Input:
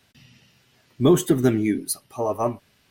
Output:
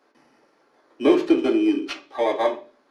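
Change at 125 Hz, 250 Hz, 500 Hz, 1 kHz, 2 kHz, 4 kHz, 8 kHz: below −20 dB, +1.0 dB, +2.0 dB, +2.0 dB, +4.5 dB, +1.5 dB, below −15 dB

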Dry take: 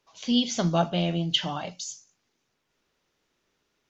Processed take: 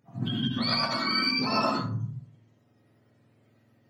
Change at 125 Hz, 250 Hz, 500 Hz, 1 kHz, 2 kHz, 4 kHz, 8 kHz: −2.0 dB, −3.0 dB, −4.5 dB, +3.0 dB, +8.0 dB, +0.5 dB, can't be measured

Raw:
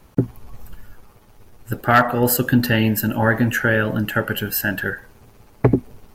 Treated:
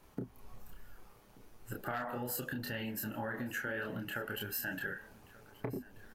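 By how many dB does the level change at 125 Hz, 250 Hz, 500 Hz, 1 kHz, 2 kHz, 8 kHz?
−24.0, −22.0, −20.5, −21.0, −18.0, −17.0 decibels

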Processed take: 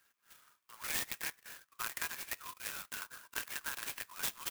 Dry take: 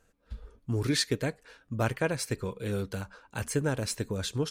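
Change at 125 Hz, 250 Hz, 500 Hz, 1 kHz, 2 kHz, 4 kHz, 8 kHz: −31.5, −26.5, −24.5, −7.0, −3.5, −8.0, −4.0 decibels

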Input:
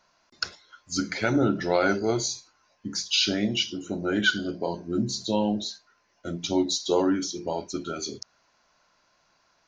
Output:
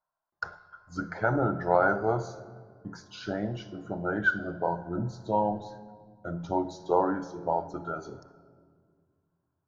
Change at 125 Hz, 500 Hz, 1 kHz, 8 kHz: −0.5 dB, −1.5 dB, +4.0 dB, below −20 dB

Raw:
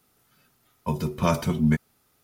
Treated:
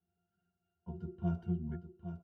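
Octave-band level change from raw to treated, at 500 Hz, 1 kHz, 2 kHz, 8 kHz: −18.0 dB, −22.5 dB, below −25 dB, below −40 dB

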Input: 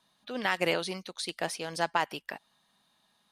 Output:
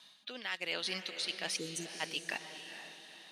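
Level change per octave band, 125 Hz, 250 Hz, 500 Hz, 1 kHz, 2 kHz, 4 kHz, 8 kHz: −8.5, −9.0, −11.5, −14.5, −5.5, 0.0, 0.0 decibels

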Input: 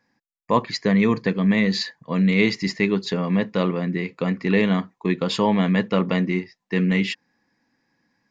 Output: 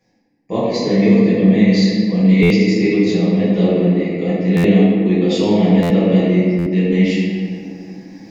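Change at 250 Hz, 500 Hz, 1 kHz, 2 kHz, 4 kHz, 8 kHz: +8.5 dB, +8.0 dB, −1.0 dB, +0.5 dB, +2.0 dB, can't be measured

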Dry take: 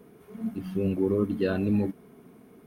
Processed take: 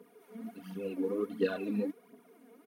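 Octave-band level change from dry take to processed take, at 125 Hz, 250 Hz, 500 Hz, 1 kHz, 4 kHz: −15.5, −8.5, −5.5, −5.0, −3.0 decibels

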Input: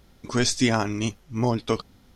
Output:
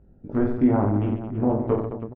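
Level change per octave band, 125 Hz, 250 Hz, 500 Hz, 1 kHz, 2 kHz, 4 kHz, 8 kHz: +2.5 dB, +4.0 dB, +2.5 dB, −1.0 dB, −13.0 dB, below −30 dB, below −40 dB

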